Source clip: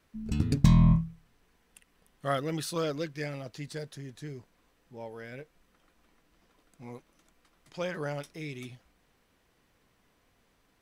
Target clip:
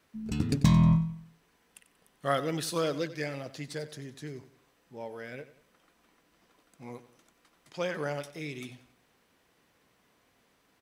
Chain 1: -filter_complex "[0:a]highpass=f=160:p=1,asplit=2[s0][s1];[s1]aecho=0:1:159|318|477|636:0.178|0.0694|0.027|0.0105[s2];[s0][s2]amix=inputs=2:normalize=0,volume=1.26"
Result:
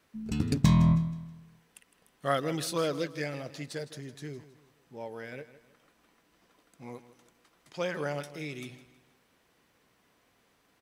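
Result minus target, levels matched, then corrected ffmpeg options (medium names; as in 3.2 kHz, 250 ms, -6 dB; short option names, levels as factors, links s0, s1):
echo 67 ms late
-filter_complex "[0:a]highpass=f=160:p=1,asplit=2[s0][s1];[s1]aecho=0:1:92|184|276|368:0.178|0.0694|0.027|0.0105[s2];[s0][s2]amix=inputs=2:normalize=0,volume=1.26"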